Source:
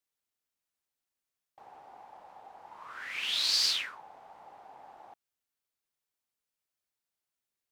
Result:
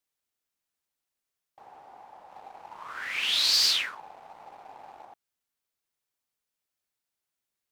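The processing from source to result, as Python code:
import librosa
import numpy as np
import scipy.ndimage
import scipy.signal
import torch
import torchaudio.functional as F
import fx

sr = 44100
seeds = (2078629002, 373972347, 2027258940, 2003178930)

y = fx.leveller(x, sr, passes=1, at=(2.31, 5.05))
y = y * 10.0 ** (2.0 / 20.0)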